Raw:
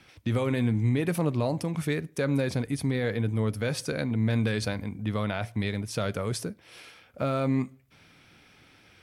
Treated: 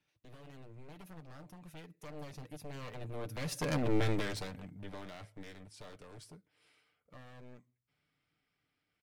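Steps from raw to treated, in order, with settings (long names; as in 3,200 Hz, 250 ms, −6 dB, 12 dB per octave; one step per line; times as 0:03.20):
wavefolder on the positive side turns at −28.5 dBFS
source passing by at 0:03.89, 24 m/s, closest 4.9 metres
comb filter 6.7 ms, depth 39%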